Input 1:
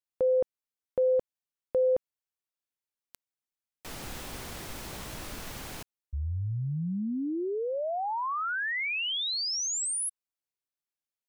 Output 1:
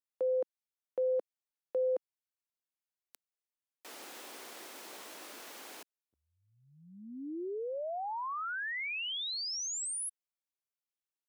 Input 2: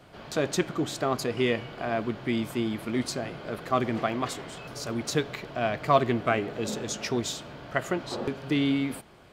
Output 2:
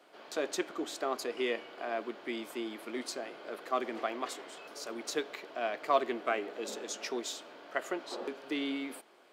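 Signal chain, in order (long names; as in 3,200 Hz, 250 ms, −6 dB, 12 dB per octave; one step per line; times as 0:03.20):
high-pass filter 300 Hz 24 dB per octave
level −6 dB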